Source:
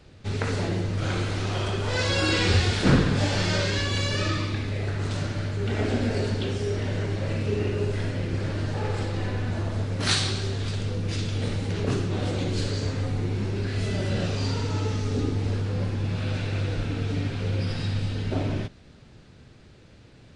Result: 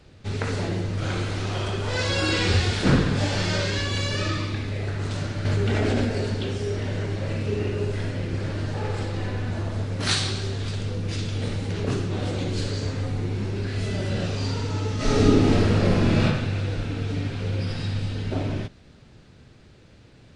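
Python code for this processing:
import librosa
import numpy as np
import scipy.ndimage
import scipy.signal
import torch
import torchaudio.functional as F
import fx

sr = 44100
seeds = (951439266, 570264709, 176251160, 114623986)

y = fx.env_flatten(x, sr, amount_pct=100, at=(5.45, 6.05))
y = fx.reverb_throw(y, sr, start_s=14.96, length_s=1.27, rt60_s=0.97, drr_db=-11.5)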